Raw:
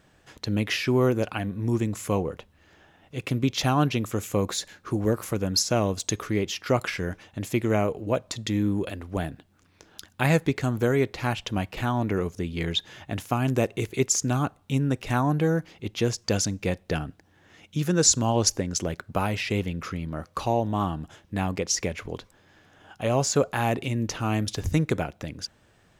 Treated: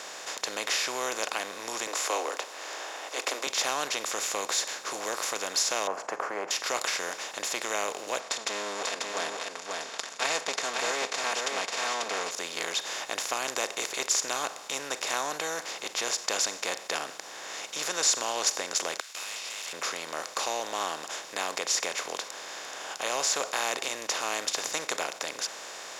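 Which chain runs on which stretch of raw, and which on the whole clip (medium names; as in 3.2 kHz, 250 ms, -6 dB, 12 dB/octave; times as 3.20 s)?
1.87–3.47 s: steep high-pass 270 Hz 72 dB/octave + peaking EQ 740 Hz +8 dB 2.6 oct
5.87–6.51 s: elliptic band-pass 160–1500 Hz + peaking EQ 770 Hz +14.5 dB 1.3 oct
8.20–12.31 s: comb filter that takes the minimum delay 4.4 ms + Bessel low-pass 6 kHz, order 8 + delay 540 ms -7.5 dB
19.00–19.73 s: Chebyshev high-pass 2.7 kHz, order 3 + compressor with a negative ratio -44 dBFS + valve stage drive 48 dB, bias 0.3
whole clip: spectral levelling over time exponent 0.4; high-pass 760 Hz 12 dB/octave; trim -7.5 dB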